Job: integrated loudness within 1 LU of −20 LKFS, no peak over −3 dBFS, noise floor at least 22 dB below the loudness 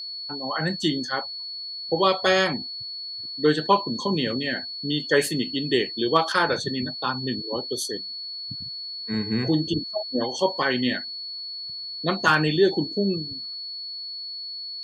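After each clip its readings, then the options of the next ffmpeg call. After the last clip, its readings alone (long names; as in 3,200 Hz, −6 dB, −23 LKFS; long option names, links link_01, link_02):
interfering tone 4,400 Hz; level of the tone −32 dBFS; integrated loudness −25.0 LKFS; sample peak −6.0 dBFS; target loudness −20.0 LKFS
→ -af "bandreject=frequency=4400:width=30"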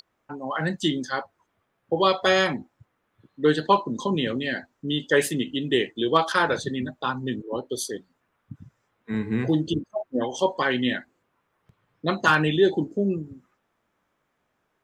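interfering tone none found; integrated loudness −25.0 LKFS; sample peak −6.5 dBFS; target loudness −20.0 LKFS
→ -af "volume=5dB,alimiter=limit=-3dB:level=0:latency=1"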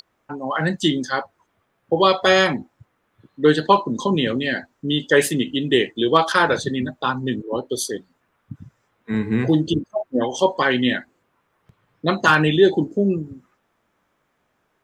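integrated loudness −20.0 LKFS; sample peak −3.0 dBFS; background noise floor −69 dBFS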